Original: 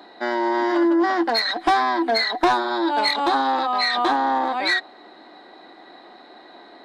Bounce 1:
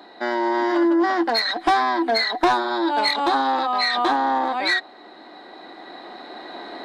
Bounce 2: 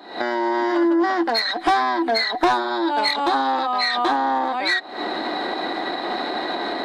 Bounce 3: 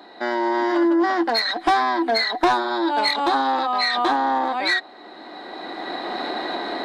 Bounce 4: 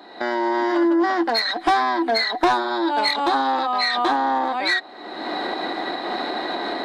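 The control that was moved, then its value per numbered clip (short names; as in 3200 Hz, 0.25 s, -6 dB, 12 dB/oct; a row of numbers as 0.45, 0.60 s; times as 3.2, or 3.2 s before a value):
recorder AGC, rising by: 5.1, 90, 14, 37 dB/s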